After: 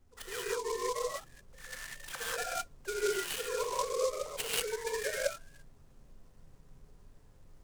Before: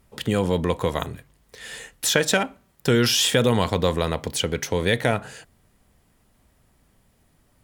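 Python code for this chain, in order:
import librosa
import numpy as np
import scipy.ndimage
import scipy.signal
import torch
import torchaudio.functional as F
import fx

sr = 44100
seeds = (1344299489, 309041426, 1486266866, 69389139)

y = fx.sine_speech(x, sr)
y = scipy.signal.sosfilt(scipy.signal.butter(2, 1700.0, 'lowpass', fs=sr, output='sos'), y)
y = np.diff(y, prepend=0.0)
y = fx.hum_notches(y, sr, base_hz=60, count=7)
y = fx.over_compress(y, sr, threshold_db=-40.0, ratio=-0.5)
y = fx.transient(y, sr, attack_db=7, sustain_db=-11)
y = fx.dmg_noise_colour(y, sr, seeds[0], colour='brown', level_db=-62.0)
y = fx.rev_gated(y, sr, seeds[1], gate_ms=220, shape='rising', drr_db=-7.0)
y = fx.noise_mod_delay(y, sr, seeds[2], noise_hz=5700.0, depth_ms=0.062)
y = y * librosa.db_to_amplitude(-1.5)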